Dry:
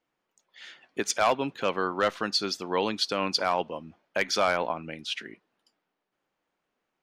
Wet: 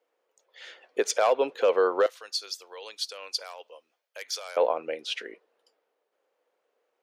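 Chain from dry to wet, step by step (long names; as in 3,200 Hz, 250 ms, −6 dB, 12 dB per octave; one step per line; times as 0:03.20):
high-pass with resonance 480 Hz, resonance Q 4.9
brickwall limiter −13.5 dBFS, peak gain reduction 7.5 dB
0:02.06–0:04.57: first difference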